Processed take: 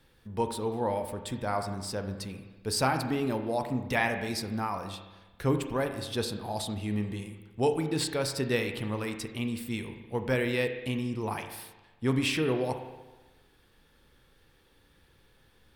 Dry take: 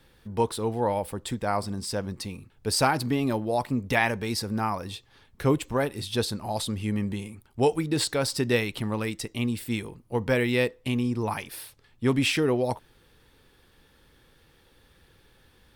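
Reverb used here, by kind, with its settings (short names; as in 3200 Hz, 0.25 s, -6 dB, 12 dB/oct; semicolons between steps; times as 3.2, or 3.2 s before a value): spring tank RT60 1.2 s, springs 31/38 ms, chirp 55 ms, DRR 6.5 dB; gain -4.5 dB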